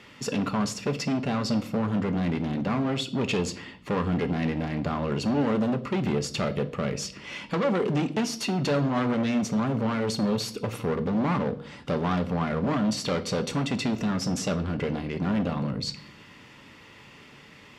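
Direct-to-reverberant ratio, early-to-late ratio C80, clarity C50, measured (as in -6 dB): 9.0 dB, 19.5 dB, 16.0 dB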